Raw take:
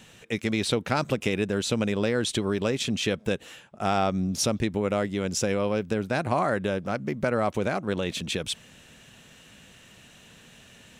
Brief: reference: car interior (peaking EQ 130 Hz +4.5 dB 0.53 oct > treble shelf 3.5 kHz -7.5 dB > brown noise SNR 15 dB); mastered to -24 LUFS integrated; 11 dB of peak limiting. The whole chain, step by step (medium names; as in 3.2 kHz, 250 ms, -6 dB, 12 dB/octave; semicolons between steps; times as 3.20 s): peak limiter -22 dBFS; peaking EQ 130 Hz +4.5 dB 0.53 oct; treble shelf 3.5 kHz -7.5 dB; brown noise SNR 15 dB; trim +8.5 dB